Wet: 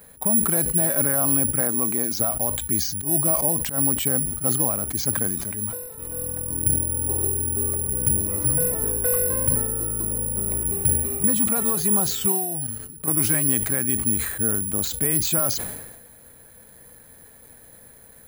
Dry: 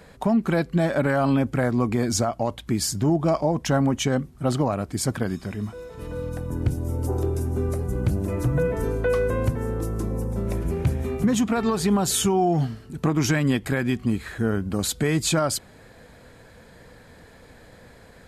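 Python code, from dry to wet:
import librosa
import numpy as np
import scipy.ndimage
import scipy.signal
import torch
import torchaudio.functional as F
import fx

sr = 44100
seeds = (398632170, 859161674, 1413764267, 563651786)

y = fx.highpass(x, sr, hz=190.0, slope=12, at=(1.61, 2.2))
y = fx.auto_swell(y, sr, attack_ms=124.0, at=(2.82, 3.78))
y = fx.level_steps(y, sr, step_db=14, at=(12.32, 13.08))
y = (np.kron(scipy.signal.resample_poly(y, 1, 4), np.eye(4)[0]) * 4)[:len(y)]
y = fx.sustainer(y, sr, db_per_s=47.0)
y = y * 10.0 ** (-6.0 / 20.0)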